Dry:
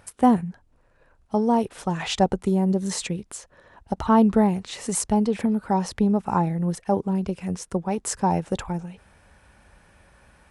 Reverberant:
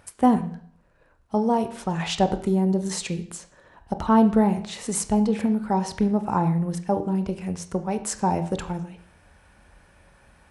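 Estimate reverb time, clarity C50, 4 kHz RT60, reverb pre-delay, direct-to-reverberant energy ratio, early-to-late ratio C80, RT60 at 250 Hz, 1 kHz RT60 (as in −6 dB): 0.55 s, 12.5 dB, 0.55 s, 23 ms, 9.0 dB, 16.0 dB, 0.55 s, 0.55 s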